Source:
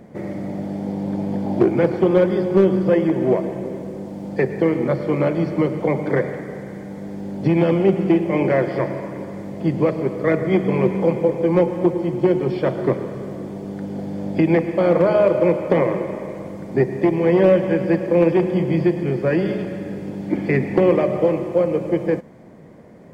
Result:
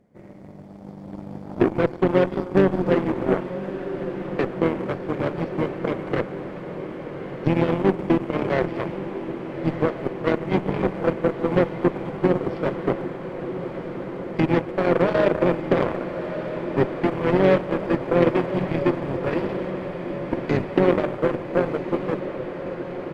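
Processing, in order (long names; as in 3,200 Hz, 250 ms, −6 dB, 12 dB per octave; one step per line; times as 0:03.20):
slap from a distant wall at 130 metres, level −13 dB
harmonic generator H 2 −28 dB, 3 −37 dB, 6 −30 dB, 7 −19 dB, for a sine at −3 dBFS
on a send: feedback delay with all-pass diffusion 1,250 ms, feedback 72%, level −10 dB
on the sum: pitch-shifted copies added −5 semitones −8 dB
level −3.5 dB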